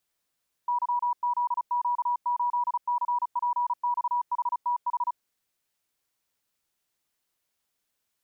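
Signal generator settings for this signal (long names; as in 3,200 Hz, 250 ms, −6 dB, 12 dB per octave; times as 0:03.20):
Morse code "YZQ8CPXHTH" 35 words per minute 970 Hz −23 dBFS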